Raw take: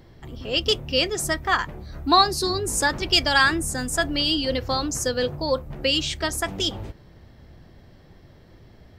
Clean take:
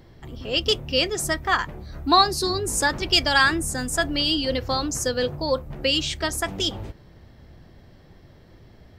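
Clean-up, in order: none needed

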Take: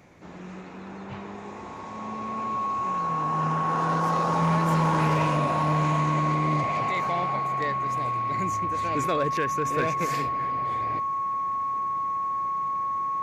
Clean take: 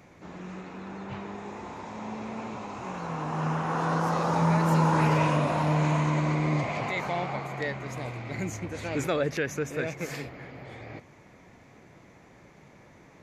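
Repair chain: clip repair -17.5 dBFS; notch 1100 Hz, Q 30; gain correction -4 dB, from 9.65

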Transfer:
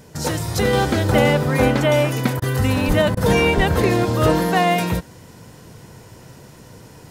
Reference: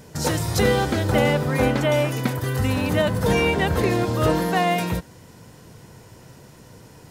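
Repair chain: de-plosive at 2.87/3.56; interpolate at 2.4/3.15, 19 ms; gain correction -3.5 dB, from 0.73

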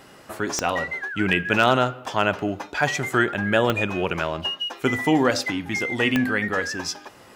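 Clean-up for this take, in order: clip repair -5.5 dBFS; de-click

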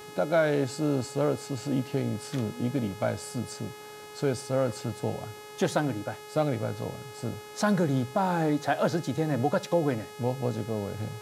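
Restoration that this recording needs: de-hum 421 Hz, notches 34

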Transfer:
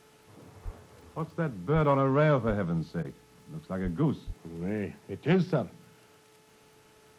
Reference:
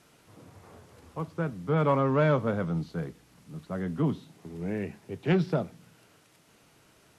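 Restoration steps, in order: de-click; de-hum 432.6 Hz, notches 16; de-plosive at 0.64/1.74/2.47/3.83/4.26; interpolate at 3.03, 14 ms

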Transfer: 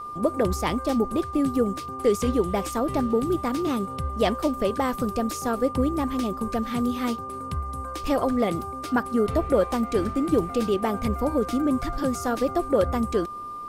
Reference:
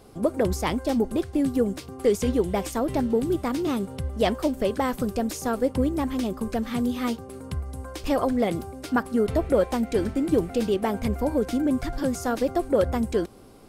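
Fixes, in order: notch 1200 Hz, Q 30

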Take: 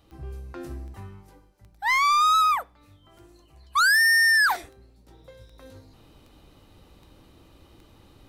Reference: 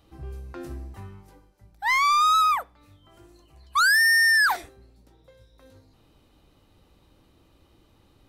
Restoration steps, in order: de-click; gain correction -6 dB, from 5.08

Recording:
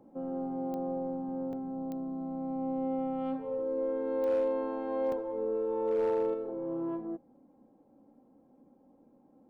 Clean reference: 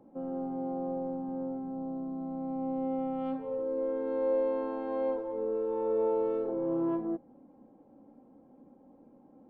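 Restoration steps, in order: clip repair -23.5 dBFS; de-click; interpolate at 1.53/5.12, 2.8 ms; gain 0 dB, from 6.34 s +4.5 dB

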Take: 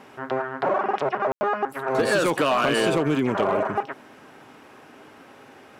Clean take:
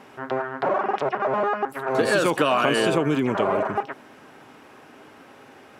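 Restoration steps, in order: clip repair -14.5 dBFS; room tone fill 1.32–1.41

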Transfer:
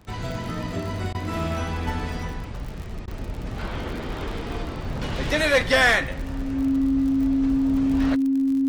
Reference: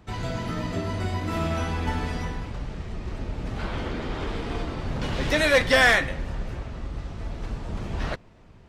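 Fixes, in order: de-click; notch 270 Hz, Q 30; interpolate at 1.13/3.06, 15 ms

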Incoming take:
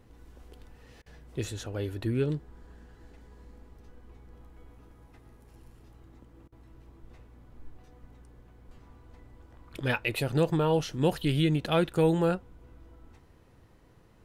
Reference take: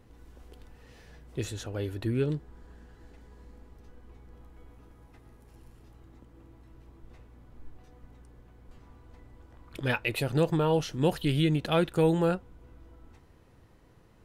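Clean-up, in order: interpolate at 1.02/6.48, 40 ms

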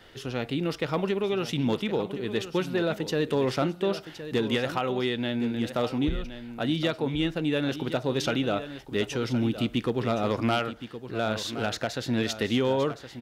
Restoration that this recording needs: inverse comb 1.067 s -12 dB

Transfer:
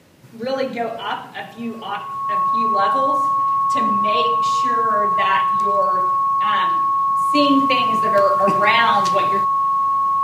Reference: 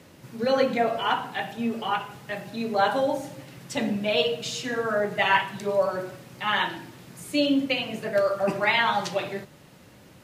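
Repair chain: notch 1100 Hz, Q 30; gain correction -5.5 dB, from 7.35

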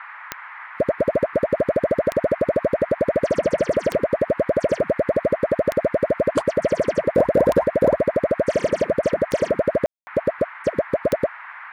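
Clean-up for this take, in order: de-click; room tone fill 9.86–10.07; noise print and reduce 27 dB

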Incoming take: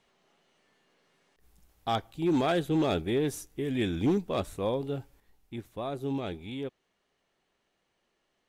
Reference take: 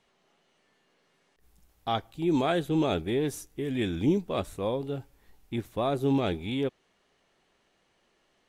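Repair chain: clip repair -20.5 dBFS; gain 0 dB, from 5.2 s +7 dB

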